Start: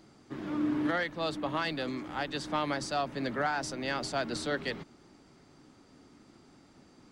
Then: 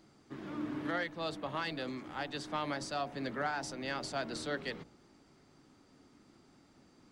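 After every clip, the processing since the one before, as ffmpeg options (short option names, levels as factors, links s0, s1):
-af "bandreject=f=60.14:t=h:w=4,bandreject=f=120.28:t=h:w=4,bandreject=f=180.42:t=h:w=4,bandreject=f=240.56:t=h:w=4,bandreject=f=300.7:t=h:w=4,bandreject=f=360.84:t=h:w=4,bandreject=f=420.98:t=h:w=4,bandreject=f=481.12:t=h:w=4,bandreject=f=541.26:t=h:w=4,bandreject=f=601.4:t=h:w=4,bandreject=f=661.54:t=h:w=4,bandreject=f=721.68:t=h:w=4,bandreject=f=781.82:t=h:w=4,bandreject=f=841.96:t=h:w=4,bandreject=f=902.1:t=h:w=4,bandreject=f=962.24:t=h:w=4,volume=0.596"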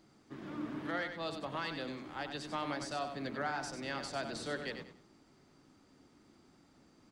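-af "aecho=1:1:95|190|285:0.398|0.107|0.029,volume=0.794"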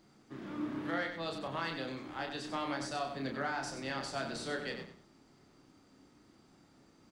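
-filter_complex "[0:a]asplit=2[s0][s1];[s1]adelay=30,volume=0.562[s2];[s0][s2]amix=inputs=2:normalize=0"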